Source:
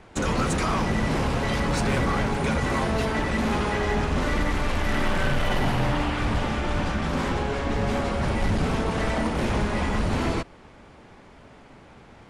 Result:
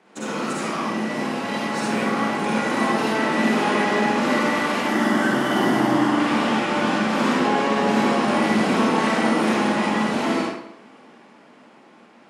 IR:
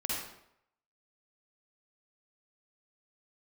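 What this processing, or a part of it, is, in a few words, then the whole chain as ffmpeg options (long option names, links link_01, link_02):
far laptop microphone: -filter_complex "[0:a]asettb=1/sr,asplit=3[link_01][link_02][link_03];[link_01]atrim=end=4.844[link_04];[link_02]atrim=start=4.84:end=6.2,asetpts=PTS-STARTPTS,afade=type=in:duration=0.004:curve=qsin,afade=type=out:start_time=1.356:duration=0.004:curve=qsin,equalizer=frequency=315:width_type=o:width=0.33:gain=9,equalizer=frequency=500:width_type=o:width=0.33:gain=-5,equalizer=frequency=2500:width_type=o:width=0.33:gain=-12,equalizer=frequency=4000:width_type=o:width=0.33:gain=-7[link_05];[link_03]atrim=start=6.196[link_06];[link_04][link_05]acrossfade=duration=0.004:curve1=hsin:curve2=qsin[link_07];[link_07][link_06]acrossfade=duration=0.004:curve1=qsin:curve2=hsin[link_08];[1:a]atrim=start_sample=2205[link_09];[link_08][link_09]afir=irnorm=-1:irlink=0,highpass=frequency=200:width=0.5412,highpass=frequency=200:width=1.3066,dynaudnorm=framelen=480:gausssize=11:maxgain=11.5dB,volume=-5dB"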